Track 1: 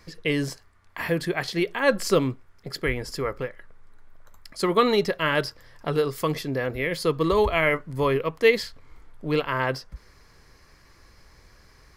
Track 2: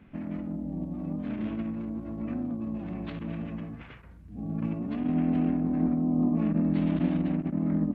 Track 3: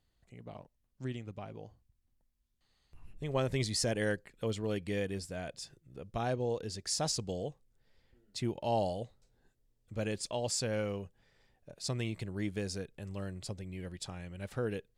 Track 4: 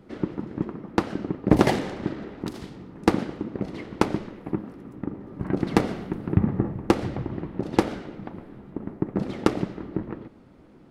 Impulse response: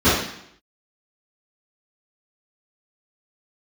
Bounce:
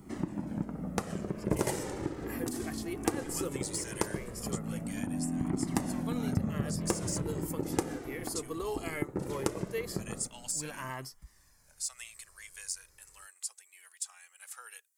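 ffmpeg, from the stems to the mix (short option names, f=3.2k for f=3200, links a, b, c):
-filter_complex "[0:a]adelay=1300,volume=-10dB[a];[1:a]adelay=50,volume=0dB[b];[2:a]highpass=f=1.1k:w=0.5412,highpass=f=1.1k:w=1.3066,deesser=0.8,volume=2.5dB[c];[3:a]volume=2.5dB[d];[a][b][c][d]amix=inputs=4:normalize=0,highshelf=f=5.6k:t=q:w=1.5:g=14,flanger=delay=0.9:depth=1.9:regen=-34:speed=0.18:shape=triangular,acompressor=threshold=-34dB:ratio=2"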